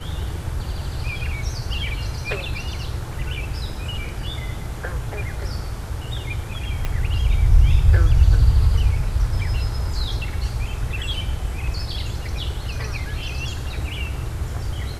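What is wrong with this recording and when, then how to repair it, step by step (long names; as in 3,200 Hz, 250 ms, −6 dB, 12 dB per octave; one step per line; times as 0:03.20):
0:06.85: click −12 dBFS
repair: click removal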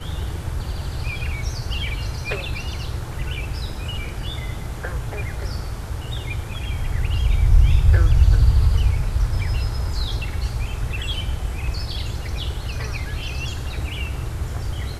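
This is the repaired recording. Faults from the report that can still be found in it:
0:06.85: click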